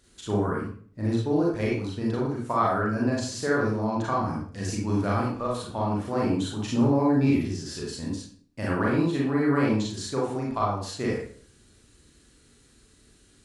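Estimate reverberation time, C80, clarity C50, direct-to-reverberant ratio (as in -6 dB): 0.50 s, 6.5 dB, 1.5 dB, -4.5 dB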